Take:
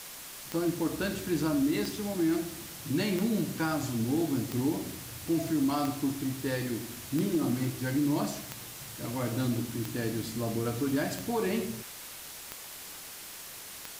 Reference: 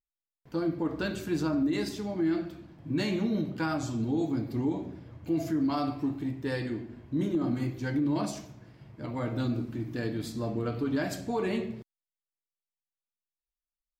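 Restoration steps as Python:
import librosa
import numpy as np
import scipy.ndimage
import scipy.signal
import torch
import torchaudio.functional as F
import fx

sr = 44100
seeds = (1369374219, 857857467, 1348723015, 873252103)

y = fx.fix_declick_ar(x, sr, threshold=10.0)
y = fx.noise_reduce(y, sr, print_start_s=13.16, print_end_s=13.66, reduce_db=30.0)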